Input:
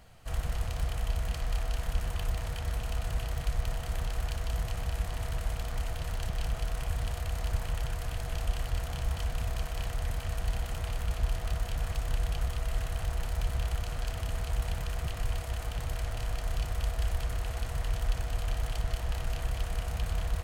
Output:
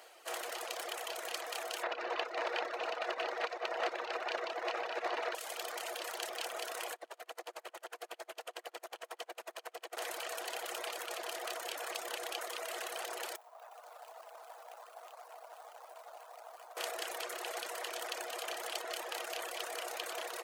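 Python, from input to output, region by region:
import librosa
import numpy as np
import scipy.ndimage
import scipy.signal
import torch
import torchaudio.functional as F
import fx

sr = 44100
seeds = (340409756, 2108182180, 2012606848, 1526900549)

y = fx.chain(x, sr, fx.air_absorb(metres=230.0),
    fx.notch(hz=3200.0, q=9.8),
    fx.env_flatten(amount_pct=70), at=(1.83, 5.35))
y = fx.chain(y, sr, fx.high_shelf(hz=2300.0, db=-7.0),
    fx.tremolo_db(hz=11.0, depth_db=25), at=(6.94, 9.97))
y = fx.chain(y, sr, fx.median_filter(points=25),
    fx.highpass(hz=720.0, slope=24),
    fx.peak_eq(hz=3000.0, db=-9.5, octaves=2.2), at=(13.36, 16.77))
y = scipy.signal.sosfilt(scipy.signal.cheby1(5, 1.0, 340.0, 'highpass', fs=sr, output='sos'), y)
y = fx.dereverb_blind(y, sr, rt60_s=0.99)
y = y * 10.0 ** (5.5 / 20.0)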